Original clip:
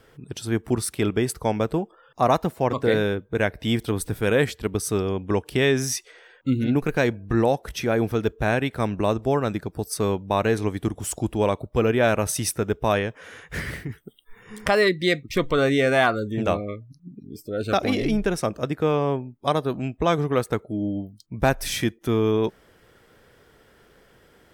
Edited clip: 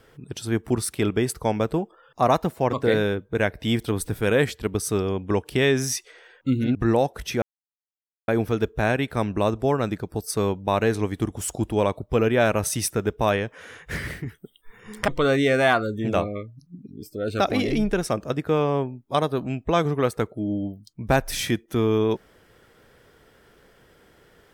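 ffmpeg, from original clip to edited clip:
ffmpeg -i in.wav -filter_complex "[0:a]asplit=4[link_01][link_02][link_03][link_04];[link_01]atrim=end=6.752[link_05];[link_02]atrim=start=7.238:end=7.91,asetpts=PTS-STARTPTS,afade=type=out:start_time=0.668:duration=0.004:curve=hsin,apad=pad_dur=0.86[link_06];[link_03]atrim=start=7.91:end=14.712,asetpts=PTS-STARTPTS,afade=type=in:duration=0.004:curve=hsin[link_07];[link_04]atrim=start=15.408[link_08];[link_06][link_07]concat=n=2:v=0:a=1[link_09];[link_05][link_09]acrossfade=duration=0.004:curve1=hsin:curve2=hsin[link_10];[link_10][link_08]acrossfade=duration=0.004:curve1=hsin:curve2=hsin" out.wav

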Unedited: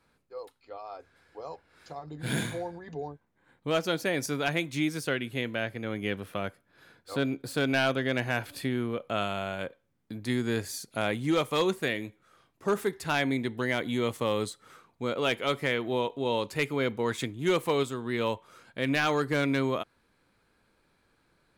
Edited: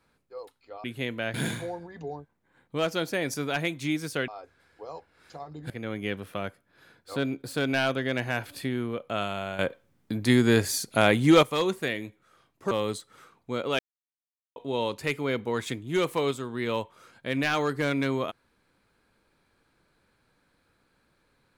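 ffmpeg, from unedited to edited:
ffmpeg -i in.wav -filter_complex "[0:a]asplit=10[link_01][link_02][link_03][link_04][link_05][link_06][link_07][link_08][link_09][link_10];[link_01]atrim=end=0.842[link_11];[link_02]atrim=start=5.198:end=5.702[link_12];[link_03]atrim=start=2.258:end=5.202[link_13];[link_04]atrim=start=0.838:end=2.262[link_14];[link_05]atrim=start=5.698:end=9.592[link_15];[link_06]atrim=start=9.588:end=11.432,asetpts=PTS-STARTPTS,volume=8.5dB[link_16];[link_07]atrim=start=11.428:end=12.712[link_17];[link_08]atrim=start=14.228:end=15.31,asetpts=PTS-STARTPTS,afade=type=out:start_time=1.078:duration=0.004:curve=hsin[link_18];[link_09]atrim=start=15.31:end=16.08,asetpts=PTS-STARTPTS,volume=0[link_19];[link_10]atrim=start=16.08,asetpts=PTS-STARTPTS,afade=type=in:duration=0.004:curve=hsin[link_20];[link_11][link_12]acrossfade=duration=0.004:curve1=hsin:curve2=hsin[link_21];[link_21][link_13]acrossfade=duration=0.004:curve1=hsin:curve2=hsin[link_22];[link_22][link_14]acrossfade=duration=0.004:curve1=hsin:curve2=hsin[link_23];[link_23][link_15]acrossfade=duration=0.004:curve1=hsin:curve2=hsin[link_24];[link_24][link_16]acrossfade=duration=0.004:curve1=hsin:curve2=hsin[link_25];[link_25][link_17]acrossfade=duration=0.004:curve1=hsin:curve2=hsin[link_26];[link_18][link_19][link_20]concat=n=3:v=0:a=1[link_27];[link_26][link_27]acrossfade=duration=0.004:curve1=hsin:curve2=hsin" out.wav

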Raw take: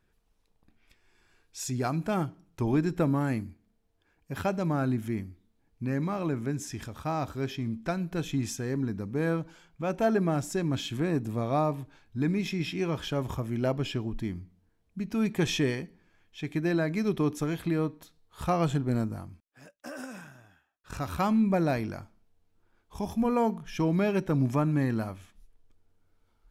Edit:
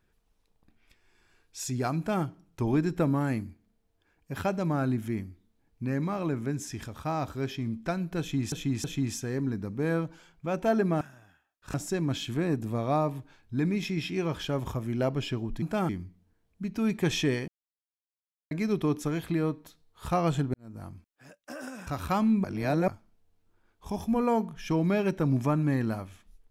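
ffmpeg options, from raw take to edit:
ffmpeg -i in.wav -filter_complex "[0:a]asplit=13[link_01][link_02][link_03][link_04][link_05][link_06][link_07][link_08][link_09][link_10][link_11][link_12][link_13];[link_01]atrim=end=8.522[link_14];[link_02]atrim=start=8.198:end=8.522[link_15];[link_03]atrim=start=8.198:end=10.372[link_16];[link_04]atrim=start=20.228:end=20.962[link_17];[link_05]atrim=start=10.368:end=14.252[link_18];[link_06]atrim=start=1.968:end=2.242[link_19];[link_07]atrim=start=14.248:end=15.84,asetpts=PTS-STARTPTS,afade=type=out:start_time=1.588:duration=0.004:curve=hsin[link_20];[link_08]atrim=start=15.84:end=16.87,asetpts=PTS-STARTPTS,volume=0[link_21];[link_09]atrim=start=16.87:end=18.9,asetpts=PTS-STARTPTS,afade=type=in:duration=0.004:curve=hsin,afade=type=out:start_time=2.026:duration=0.004:curve=hsin[link_22];[link_10]atrim=start=18.9:end=20.232,asetpts=PTS-STARTPTS,afade=type=in:duration=0.33:curve=qua[link_23];[link_11]atrim=start=20.958:end=21.532[link_24];[link_12]atrim=start=21.528:end=21.972,asetpts=PTS-STARTPTS,areverse[link_25];[link_13]atrim=start=21.968[link_26];[link_14][link_15]acrossfade=duration=0.004:curve1=hsin:curve2=hsin[link_27];[link_27][link_16]acrossfade=duration=0.004:curve1=hsin:curve2=hsin[link_28];[link_28][link_17]acrossfade=duration=0.004:curve1=hsin:curve2=hsin[link_29];[link_29][link_18]acrossfade=duration=0.004:curve1=hsin:curve2=hsin[link_30];[link_30][link_19]acrossfade=duration=0.004:curve1=hsin:curve2=hsin[link_31];[link_20][link_21][link_22][link_23]concat=n=4:v=0:a=1[link_32];[link_31][link_32]acrossfade=duration=0.004:curve1=hsin:curve2=hsin[link_33];[link_33][link_24]acrossfade=duration=0.004:curve1=hsin:curve2=hsin[link_34];[link_34][link_25]acrossfade=duration=0.004:curve1=hsin:curve2=hsin[link_35];[link_35][link_26]acrossfade=duration=0.004:curve1=hsin:curve2=hsin" out.wav

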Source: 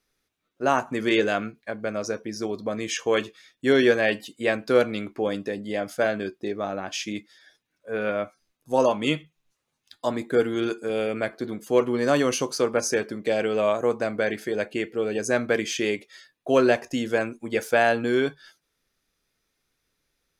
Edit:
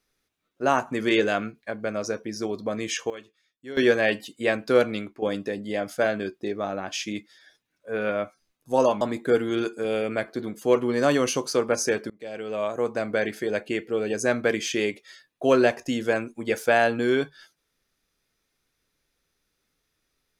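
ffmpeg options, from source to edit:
ffmpeg -i in.wav -filter_complex "[0:a]asplit=6[link_01][link_02][link_03][link_04][link_05][link_06];[link_01]atrim=end=3.1,asetpts=PTS-STARTPTS,afade=type=out:start_time=2.86:duration=0.24:curve=log:silence=0.133352[link_07];[link_02]atrim=start=3.1:end=3.77,asetpts=PTS-STARTPTS,volume=-17.5dB[link_08];[link_03]atrim=start=3.77:end=5.22,asetpts=PTS-STARTPTS,afade=type=in:duration=0.24:curve=log:silence=0.133352,afade=type=out:start_time=1.19:duration=0.26:silence=0.266073[link_09];[link_04]atrim=start=5.22:end=9.012,asetpts=PTS-STARTPTS,afade=type=in:duration=0.004:curve=hsin:silence=0.266073[link_10];[link_05]atrim=start=10.058:end=13.15,asetpts=PTS-STARTPTS,afade=type=out:start_time=3.088:duration=0.004:curve=hsin:silence=0.0668344[link_11];[link_06]atrim=start=13.15,asetpts=PTS-STARTPTS,afade=type=in:duration=1.03:silence=0.0668344[link_12];[link_07][link_08][link_09][link_10]concat=n=4:v=0:a=1[link_13];[link_11][link_12]concat=n=2:v=0:a=1[link_14];[link_13][link_14]acrossfade=duration=0.004:curve1=hsin:curve2=hsin" out.wav

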